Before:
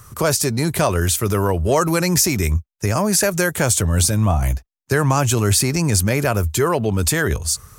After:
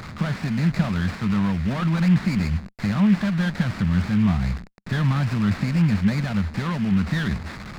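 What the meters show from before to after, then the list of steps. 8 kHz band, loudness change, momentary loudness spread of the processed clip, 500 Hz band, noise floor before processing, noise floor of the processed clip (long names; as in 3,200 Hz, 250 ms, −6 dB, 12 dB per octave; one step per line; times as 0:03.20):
below −25 dB, −4.5 dB, 7 LU, −17.0 dB, −63 dBFS, −38 dBFS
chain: linear delta modulator 16 kbit/s, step −26 dBFS
drawn EQ curve 110 Hz 0 dB, 200 Hz +13 dB, 400 Hz −15 dB, 1,900 Hz +7 dB
windowed peak hold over 9 samples
level −6.5 dB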